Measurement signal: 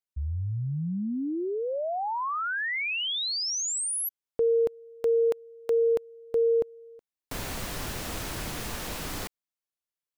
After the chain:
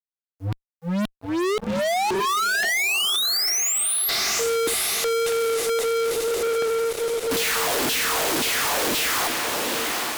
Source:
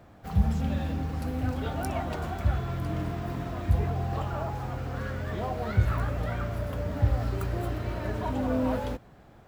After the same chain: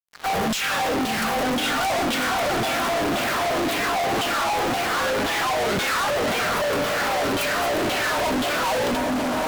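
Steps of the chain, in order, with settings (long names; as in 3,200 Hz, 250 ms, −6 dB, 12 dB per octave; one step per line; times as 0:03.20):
auto-filter high-pass saw down 1.9 Hz 230–3,500 Hz
feedback delay with all-pass diffusion 798 ms, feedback 47%, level −12 dB
fuzz pedal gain 51 dB, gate −54 dBFS
level −8.5 dB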